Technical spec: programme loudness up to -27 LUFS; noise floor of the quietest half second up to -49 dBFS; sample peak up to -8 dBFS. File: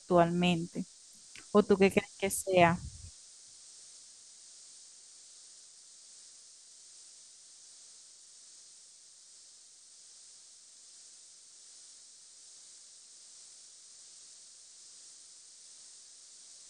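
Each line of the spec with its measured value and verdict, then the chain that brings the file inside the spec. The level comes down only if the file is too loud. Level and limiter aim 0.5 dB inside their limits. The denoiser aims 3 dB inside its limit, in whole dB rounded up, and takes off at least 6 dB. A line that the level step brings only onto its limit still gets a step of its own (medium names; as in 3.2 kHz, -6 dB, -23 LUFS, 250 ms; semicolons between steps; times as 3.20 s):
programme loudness -29.0 LUFS: pass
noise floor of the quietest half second -57 dBFS: pass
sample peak -9.5 dBFS: pass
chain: none needed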